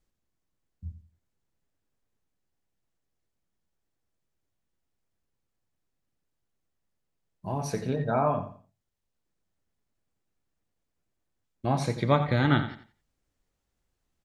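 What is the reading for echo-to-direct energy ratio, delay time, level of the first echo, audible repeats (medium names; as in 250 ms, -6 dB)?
-11.0 dB, 88 ms, -11.5 dB, 3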